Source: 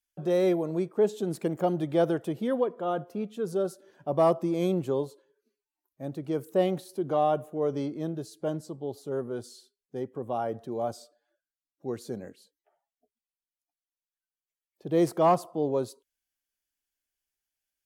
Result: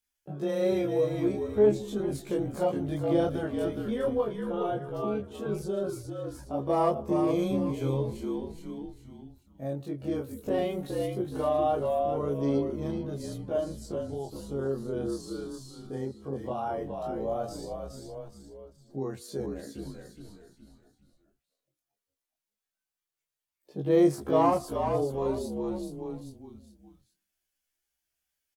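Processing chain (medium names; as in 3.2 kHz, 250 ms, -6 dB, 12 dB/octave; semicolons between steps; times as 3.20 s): frequency-shifting echo 258 ms, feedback 37%, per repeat -54 Hz, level -6 dB; granular stretch 1.6×, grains 77 ms; in parallel at +2 dB: compression, threshold -40 dBFS, peak gain reduction 21 dB; on the sum: chorus voices 2, 0.16 Hz, delay 19 ms, depth 4.7 ms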